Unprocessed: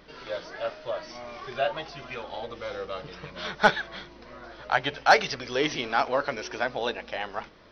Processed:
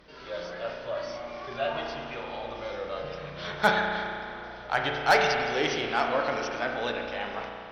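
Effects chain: added harmonics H 2 -21 dB, 5 -22 dB, 7 -26 dB, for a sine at -6 dBFS; transient shaper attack -2 dB, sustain +3 dB; spring tank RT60 2.4 s, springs 34 ms, chirp 60 ms, DRR 1 dB; gain -3 dB

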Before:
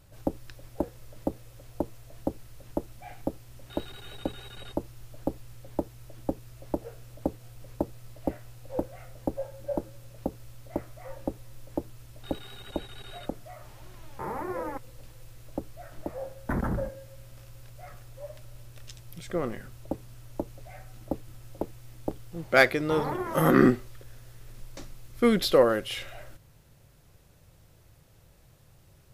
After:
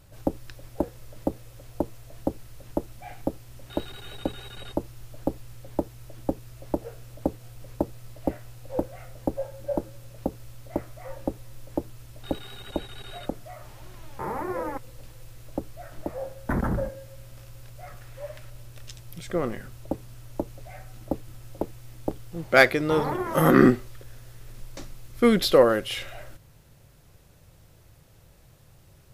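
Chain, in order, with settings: 18.01–18.5 bell 1800 Hz +7.5 dB 1.4 oct; gain +3 dB

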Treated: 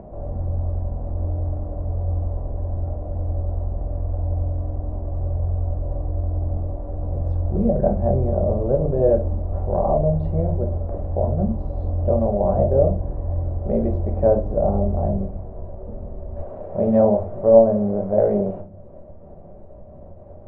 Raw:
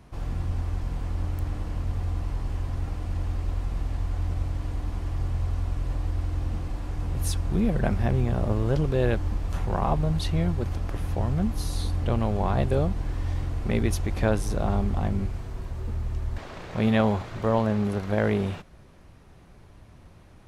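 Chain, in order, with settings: reverb RT60 0.35 s, pre-delay 5 ms, DRR 3 dB; upward compressor, threshold -31 dBFS; synth low-pass 610 Hz, resonance Q 5.3; gain -2.5 dB

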